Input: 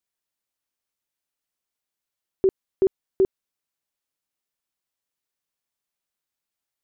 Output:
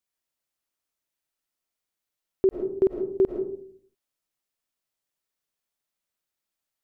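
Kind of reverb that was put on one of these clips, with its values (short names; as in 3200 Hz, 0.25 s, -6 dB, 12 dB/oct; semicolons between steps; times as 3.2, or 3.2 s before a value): digital reverb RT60 0.55 s, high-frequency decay 0.3×, pre-delay 70 ms, DRR 4 dB; gain -1 dB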